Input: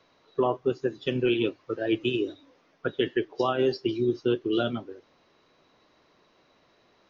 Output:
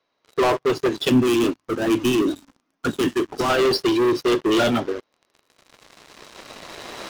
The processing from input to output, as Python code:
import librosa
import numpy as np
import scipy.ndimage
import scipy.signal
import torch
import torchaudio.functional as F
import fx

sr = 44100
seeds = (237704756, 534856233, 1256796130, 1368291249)

y = fx.recorder_agc(x, sr, target_db=-22.0, rise_db_per_s=6.0, max_gain_db=30)
y = fx.low_shelf(y, sr, hz=210.0, db=-9.0)
y = fx.hum_notches(y, sr, base_hz=50, count=3)
y = fx.leveller(y, sr, passes=5)
y = fx.graphic_eq(y, sr, hz=(250, 500, 2000, 4000), db=(9, -10, -5, -5), at=(1.09, 3.5))